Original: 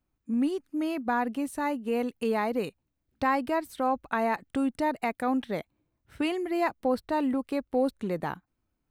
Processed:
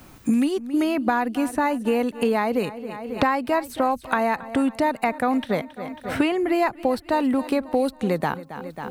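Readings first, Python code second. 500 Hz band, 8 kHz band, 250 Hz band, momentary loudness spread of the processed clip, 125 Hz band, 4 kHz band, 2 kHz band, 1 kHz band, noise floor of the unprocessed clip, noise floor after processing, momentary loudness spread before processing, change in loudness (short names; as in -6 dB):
+6.5 dB, +8.0 dB, +6.5 dB, 8 LU, +8.5 dB, +7.5 dB, +6.5 dB, +6.0 dB, -80 dBFS, -48 dBFS, 5 LU, +6.0 dB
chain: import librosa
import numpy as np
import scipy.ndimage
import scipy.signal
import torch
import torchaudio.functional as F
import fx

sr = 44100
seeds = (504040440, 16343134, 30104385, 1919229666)

y = fx.peak_eq(x, sr, hz=330.0, db=-3.0, octaves=0.92)
y = fx.echo_feedback(y, sr, ms=272, feedback_pct=47, wet_db=-19)
y = fx.band_squash(y, sr, depth_pct=100)
y = y * 10.0 ** (6.5 / 20.0)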